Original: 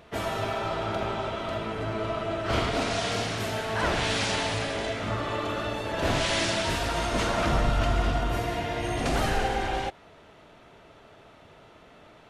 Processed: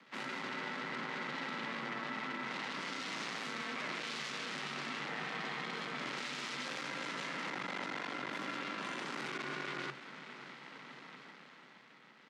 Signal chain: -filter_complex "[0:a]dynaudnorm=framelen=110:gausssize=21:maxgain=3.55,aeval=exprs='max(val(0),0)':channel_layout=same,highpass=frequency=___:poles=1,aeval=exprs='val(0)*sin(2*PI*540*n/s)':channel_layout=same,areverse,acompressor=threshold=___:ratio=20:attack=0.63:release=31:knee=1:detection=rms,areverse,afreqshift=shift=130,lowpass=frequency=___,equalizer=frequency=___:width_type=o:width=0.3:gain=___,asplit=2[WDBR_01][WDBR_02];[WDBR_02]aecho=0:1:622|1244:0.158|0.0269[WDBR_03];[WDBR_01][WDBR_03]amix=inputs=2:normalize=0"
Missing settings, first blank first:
490, 0.02, 5800, 2000, 4.5